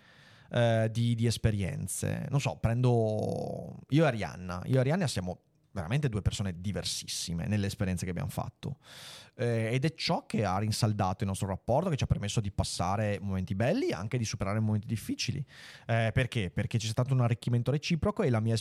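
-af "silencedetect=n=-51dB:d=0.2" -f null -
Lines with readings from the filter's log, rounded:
silence_start: 5.36
silence_end: 5.75 | silence_duration: 0.39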